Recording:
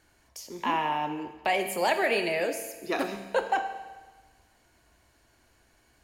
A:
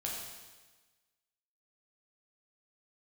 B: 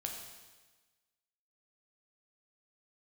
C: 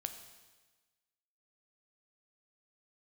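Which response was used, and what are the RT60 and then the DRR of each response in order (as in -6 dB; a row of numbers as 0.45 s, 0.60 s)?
C; 1.3 s, 1.3 s, 1.3 s; -3.5 dB, 1.0 dB, 7.0 dB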